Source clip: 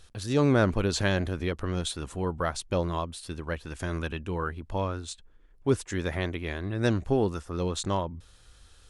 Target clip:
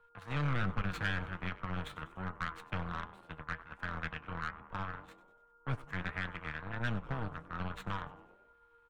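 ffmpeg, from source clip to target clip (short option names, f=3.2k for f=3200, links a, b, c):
-filter_complex "[0:a]acrossover=split=230|3000[a][b][c];[b]acompressor=threshold=-33dB:ratio=6[d];[a][d][c]amix=inputs=3:normalize=0,aeval=exprs='val(0)+0.0178*sin(2*PI*470*n/s)':c=same,aeval=exprs='0.2*(cos(1*acos(clip(val(0)/0.2,-1,1)))-cos(1*PI/2))+0.0282*(cos(7*acos(clip(val(0)/0.2,-1,1)))-cos(7*PI/2))':c=same,firequalizer=gain_entry='entry(150,0);entry(350,-11);entry(1300,11);entry(4900,-16)':delay=0.05:min_phase=1,asplit=2[e][f];[f]asplit=5[g][h][i][j][k];[g]adelay=97,afreqshift=-140,volume=-17.5dB[l];[h]adelay=194,afreqshift=-280,volume=-22.5dB[m];[i]adelay=291,afreqshift=-420,volume=-27.6dB[n];[j]adelay=388,afreqshift=-560,volume=-32.6dB[o];[k]adelay=485,afreqshift=-700,volume=-37.6dB[p];[l][m][n][o][p]amix=inputs=5:normalize=0[q];[e][q]amix=inputs=2:normalize=0,flanger=delay=4.7:depth=2.2:regen=71:speed=1.3:shape=triangular,acrossover=split=110|1900[r][s][t];[s]asoftclip=type=tanh:threshold=-33.5dB[u];[r][u][t]amix=inputs=3:normalize=0,volume=1.5dB"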